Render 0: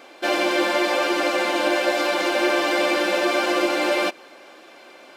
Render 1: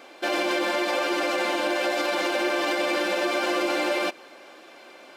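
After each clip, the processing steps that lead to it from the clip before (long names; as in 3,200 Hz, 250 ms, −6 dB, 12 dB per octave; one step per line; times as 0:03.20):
high-pass filter 51 Hz
brickwall limiter −14.5 dBFS, peak gain reduction 6 dB
level −1.5 dB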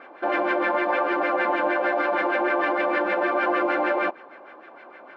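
auto-filter low-pass sine 6.5 Hz 910–1,900 Hz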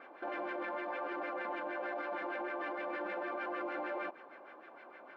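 brickwall limiter −23 dBFS, peak gain reduction 11 dB
level −8.5 dB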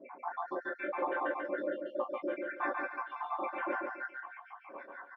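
time-frequency cells dropped at random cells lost 81%
repeating echo 141 ms, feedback 31%, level −4 dB
convolution reverb, pre-delay 3 ms, DRR −14.5 dB
level −6 dB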